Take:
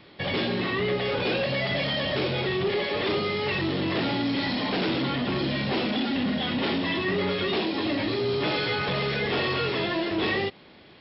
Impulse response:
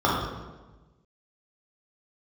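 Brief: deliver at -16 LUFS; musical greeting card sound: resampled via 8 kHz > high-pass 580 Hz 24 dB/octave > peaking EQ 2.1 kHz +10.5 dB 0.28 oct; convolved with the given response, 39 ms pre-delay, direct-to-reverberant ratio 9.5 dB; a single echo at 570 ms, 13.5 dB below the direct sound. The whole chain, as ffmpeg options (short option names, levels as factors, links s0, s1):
-filter_complex "[0:a]aecho=1:1:570:0.211,asplit=2[s0][s1];[1:a]atrim=start_sample=2205,adelay=39[s2];[s1][s2]afir=irnorm=-1:irlink=0,volume=0.0376[s3];[s0][s3]amix=inputs=2:normalize=0,aresample=8000,aresample=44100,highpass=f=580:w=0.5412,highpass=f=580:w=1.3066,equalizer=f=2100:t=o:w=0.28:g=10.5,volume=2.99"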